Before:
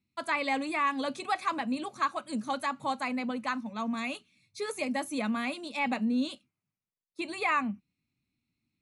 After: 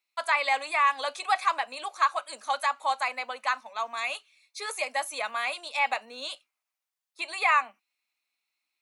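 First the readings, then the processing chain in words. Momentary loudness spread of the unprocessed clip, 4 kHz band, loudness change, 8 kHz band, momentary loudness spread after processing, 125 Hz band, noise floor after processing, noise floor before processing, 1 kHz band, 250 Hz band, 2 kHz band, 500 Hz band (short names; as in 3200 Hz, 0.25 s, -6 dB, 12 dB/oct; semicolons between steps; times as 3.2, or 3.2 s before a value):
9 LU, +5.5 dB, +3.5 dB, +5.5 dB, 13 LU, n/a, under -85 dBFS, under -85 dBFS, +5.5 dB, -24.5 dB, +5.5 dB, 0.0 dB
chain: HPF 620 Hz 24 dB/oct; gain +5.5 dB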